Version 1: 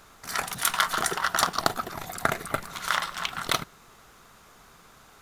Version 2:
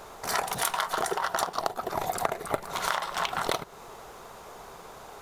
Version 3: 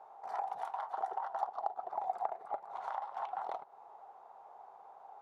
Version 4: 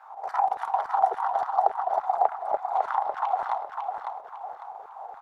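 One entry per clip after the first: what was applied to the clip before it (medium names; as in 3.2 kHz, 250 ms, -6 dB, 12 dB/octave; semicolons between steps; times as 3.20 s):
high-order bell 600 Hz +9.5 dB; compression 16:1, threshold -28 dBFS, peak gain reduction 18 dB; trim +4 dB
band-pass filter 800 Hz, Q 6.8; trim -1 dB
LFO high-pass saw down 3.5 Hz 420–1600 Hz; square tremolo 5.9 Hz, depth 60%, duty 85%; feedback delay 552 ms, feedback 34%, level -5.5 dB; trim +8.5 dB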